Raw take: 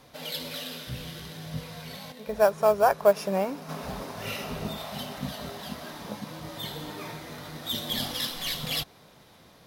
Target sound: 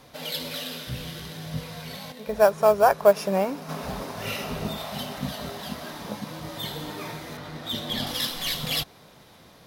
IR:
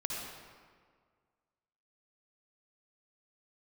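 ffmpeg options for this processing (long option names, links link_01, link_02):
-filter_complex "[0:a]asettb=1/sr,asplit=3[link_01][link_02][link_03];[link_01]atrim=end=7.374[link_04];[link_02]atrim=start=7.37:end=8.07,asetpts=PTS-STARTPTS,afade=type=in:duration=0.004:curve=qsin,afade=type=out:start_time=0.696:duration=0.004:curve=qsin,highshelf=frequency=6000:gain=-11[link_05];[link_03]atrim=start=8.066[link_06];[link_04][link_05]acrossfade=duration=0.004:curve1=hsin:curve2=qsin[link_07];[link_07][link_06]acrossfade=duration=0.004:curve1=qsin:curve2=hsin,volume=3dB"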